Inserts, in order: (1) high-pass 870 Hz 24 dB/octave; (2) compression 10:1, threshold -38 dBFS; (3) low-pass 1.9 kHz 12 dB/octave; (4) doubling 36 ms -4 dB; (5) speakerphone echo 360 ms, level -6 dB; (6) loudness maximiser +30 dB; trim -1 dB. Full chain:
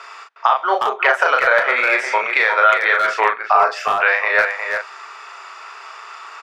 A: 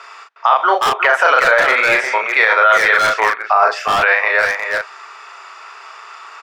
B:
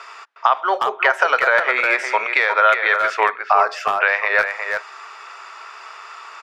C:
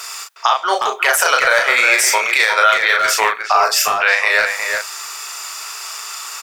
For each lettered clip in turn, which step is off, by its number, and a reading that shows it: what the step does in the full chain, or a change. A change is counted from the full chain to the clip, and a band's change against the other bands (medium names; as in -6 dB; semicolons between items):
2, mean gain reduction 3.0 dB; 4, loudness change -1.5 LU; 3, 4 kHz band +10.5 dB